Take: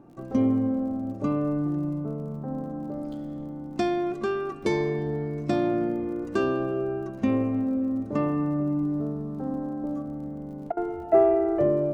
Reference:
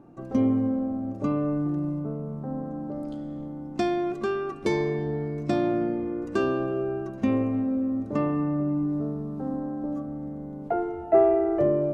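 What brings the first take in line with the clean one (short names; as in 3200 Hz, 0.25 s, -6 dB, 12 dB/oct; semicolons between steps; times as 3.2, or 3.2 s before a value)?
de-click; interpolate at 10.72, 48 ms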